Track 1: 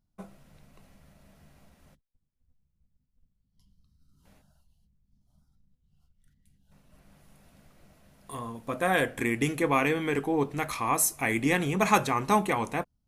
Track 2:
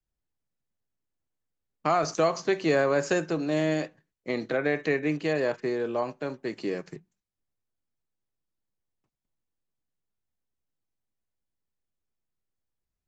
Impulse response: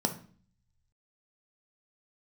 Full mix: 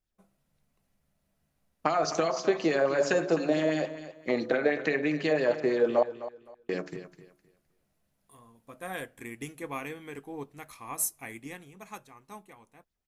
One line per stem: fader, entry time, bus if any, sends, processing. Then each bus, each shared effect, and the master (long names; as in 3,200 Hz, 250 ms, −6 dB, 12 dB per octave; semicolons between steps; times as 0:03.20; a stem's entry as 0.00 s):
0:11.23 −9 dB → 0:11.86 −21 dB, 0.00 s, no send, no echo send, high-shelf EQ 6,900 Hz +8 dB; expander for the loud parts 1.5 to 1, over −37 dBFS
0.0 dB, 0.00 s, muted 0:06.03–0:06.69, send −22.5 dB, echo send −12.5 dB, hum removal 71.37 Hz, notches 20; downward compressor 6 to 1, threshold −26 dBFS, peak gain reduction 8 dB; auto-filter bell 6 Hz 480–4,300 Hz +9 dB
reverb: on, RT60 0.45 s, pre-delay 3 ms
echo: repeating echo 258 ms, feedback 24%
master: no processing